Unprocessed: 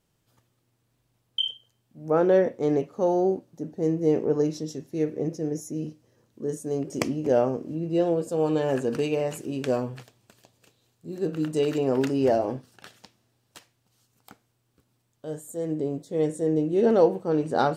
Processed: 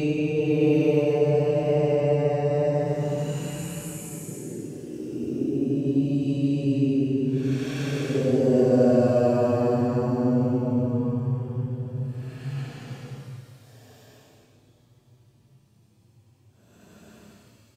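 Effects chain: bass shelf 360 Hz +11.5 dB; Paulstretch 14×, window 0.10 s, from 9.08 s; doubling 29 ms -12 dB; trim -1.5 dB

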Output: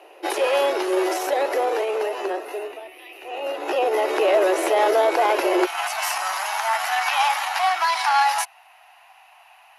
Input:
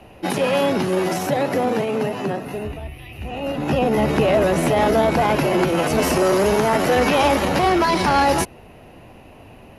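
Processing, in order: elliptic high-pass 350 Hz, stop band 40 dB, from 5.65 s 750 Hz

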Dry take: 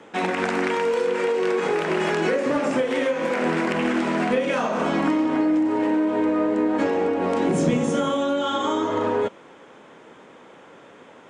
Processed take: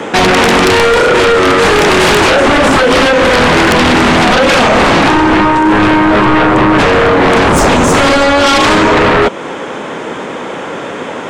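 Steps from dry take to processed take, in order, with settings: 1.59–2.26 s: treble shelf 8.1 kHz +7 dB; in parallel at +1.5 dB: compression, threshold -30 dBFS, peak gain reduction 13.5 dB; on the sum: sine folder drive 11 dB, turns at -9 dBFS; trim +4.5 dB

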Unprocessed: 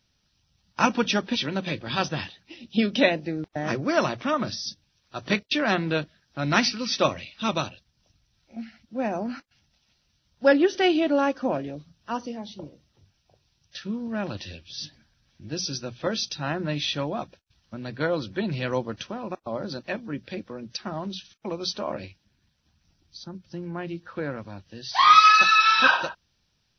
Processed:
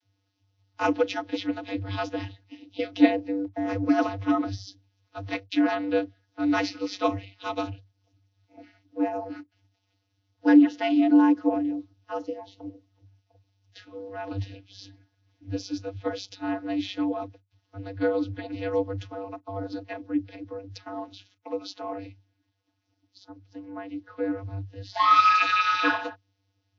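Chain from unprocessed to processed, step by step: vocoder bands 32, square 97.8 Hz; 21.31–23.30 s: bass shelf 130 Hz -11 dB

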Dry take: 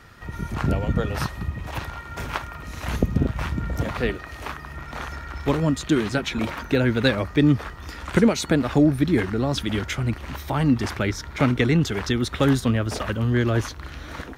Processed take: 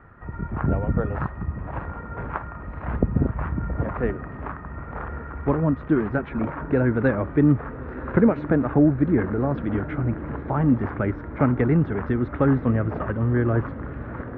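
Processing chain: low-pass 1.6 kHz 24 dB/octave; echo that smears into a reverb 1112 ms, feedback 57%, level -14.5 dB

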